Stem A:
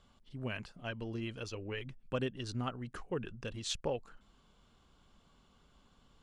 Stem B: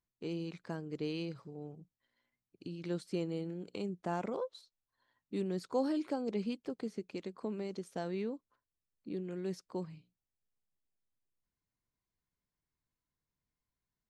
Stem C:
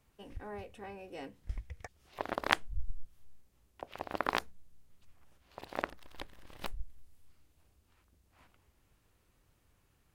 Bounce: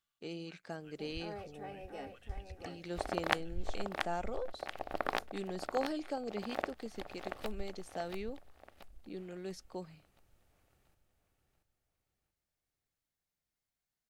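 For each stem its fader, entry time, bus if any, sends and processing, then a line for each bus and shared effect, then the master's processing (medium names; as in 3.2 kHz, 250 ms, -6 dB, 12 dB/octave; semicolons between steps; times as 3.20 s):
-18.5 dB, 0.00 s, no send, no echo send, high-pass 1.2 kHz 24 dB/octave
-2.5 dB, 0.00 s, no send, no echo send, tilt shelf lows -4.5 dB, about 890 Hz
-3.5 dB, 0.80 s, no send, echo send -5.5 dB, none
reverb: none
echo: feedback delay 682 ms, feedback 40%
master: peaking EQ 690 Hz +5.5 dB 0.92 oct; band-stop 1 kHz, Q 5.9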